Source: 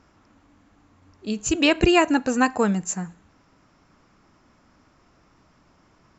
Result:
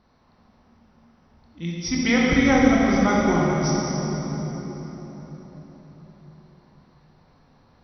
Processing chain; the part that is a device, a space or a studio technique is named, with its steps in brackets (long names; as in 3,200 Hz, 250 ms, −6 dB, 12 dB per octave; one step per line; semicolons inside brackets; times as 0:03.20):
slowed and reverbed (speed change −21%; convolution reverb RT60 4.4 s, pre-delay 16 ms, DRR −4.5 dB)
level −5 dB